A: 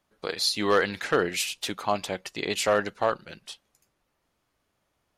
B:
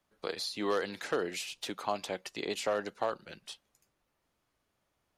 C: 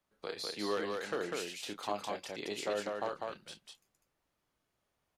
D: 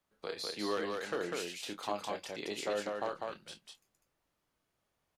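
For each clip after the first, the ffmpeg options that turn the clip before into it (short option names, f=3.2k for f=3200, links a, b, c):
-filter_complex "[0:a]acrossover=split=200|1200|3500|7100[a][b][c][d][e];[a]acompressor=threshold=-53dB:ratio=4[f];[b]acompressor=threshold=-24dB:ratio=4[g];[c]acompressor=threshold=-40dB:ratio=4[h];[d]acompressor=threshold=-38dB:ratio=4[i];[e]acompressor=threshold=-47dB:ratio=4[j];[f][g][h][i][j]amix=inputs=5:normalize=0,volume=-4dB"
-af "aecho=1:1:29.15|198.3:0.398|0.708,volume=-5dB"
-filter_complex "[0:a]asplit=2[a][b];[b]adelay=23,volume=-14dB[c];[a][c]amix=inputs=2:normalize=0"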